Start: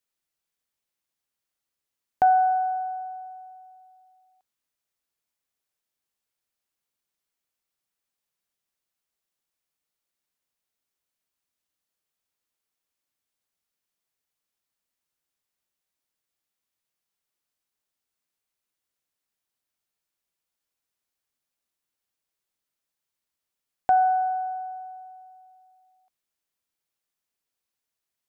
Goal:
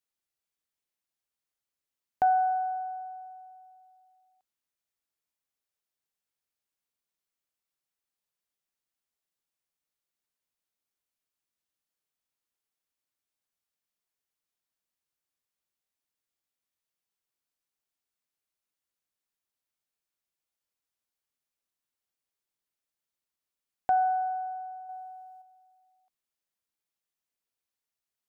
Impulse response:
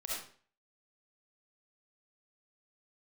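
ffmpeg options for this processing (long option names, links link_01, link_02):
-filter_complex "[0:a]asettb=1/sr,asplit=3[link_01][link_02][link_03];[link_01]atrim=end=24.894[link_04];[link_02]atrim=start=24.89:end=25.42,asetpts=PTS-STARTPTS,afade=type=in:duration=0.004:curve=qsin,afade=type=out:start_time=0.526:duration=0.004:curve=qsin,acontrast=38[link_05];[link_03]atrim=start=25.416[link_06];[link_04][link_05]acrossfade=duration=0.004:curve1=hsin:curve2=qsin[link_07];[link_07][link_06]acrossfade=duration=0.004:curve1=qsin:curve2=hsin,volume=-5dB"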